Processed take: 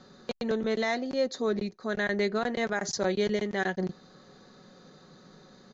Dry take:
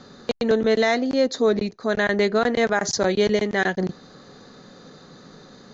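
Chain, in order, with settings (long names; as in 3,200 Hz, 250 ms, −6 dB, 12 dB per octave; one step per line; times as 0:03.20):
comb filter 5.4 ms, depth 30%
level −8.5 dB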